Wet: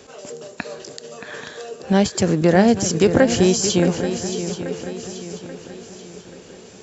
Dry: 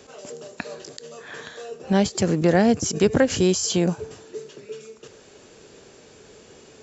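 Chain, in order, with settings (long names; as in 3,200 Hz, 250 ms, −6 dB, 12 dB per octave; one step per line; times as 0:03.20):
feedback echo with a long and a short gap by turns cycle 833 ms, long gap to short 3 to 1, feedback 44%, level −10 dB
level +3 dB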